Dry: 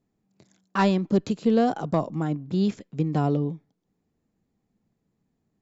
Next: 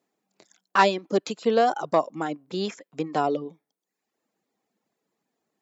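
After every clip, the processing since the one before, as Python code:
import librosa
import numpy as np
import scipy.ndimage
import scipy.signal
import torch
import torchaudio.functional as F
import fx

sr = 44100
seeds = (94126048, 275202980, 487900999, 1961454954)

y = fx.dereverb_blind(x, sr, rt60_s=0.74)
y = scipy.signal.sosfilt(scipy.signal.butter(2, 470.0, 'highpass', fs=sr, output='sos'), y)
y = y * 10.0 ** (6.5 / 20.0)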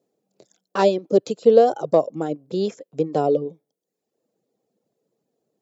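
y = fx.graphic_eq_10(x, sr, hz=(125, 500, 1000, 2000), db=(10, 12, -6, -8))
y = y * 10.0 ** (-1.0 / 20.0)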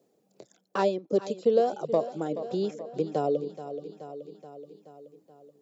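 y = fx.echo_feedback(x, sr, ms=427, feedback_pct=49, wet_db=-15.0)
y = fx.band_squash(y, sr, depth_pct=40)
y = y * 10.0 ** (-7.0 / 20.0)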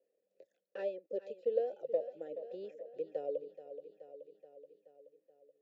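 y = fx.vowel_filter(x, sr, vowel='e')
y = y * 10.0 ** (-3.0 / 20.0)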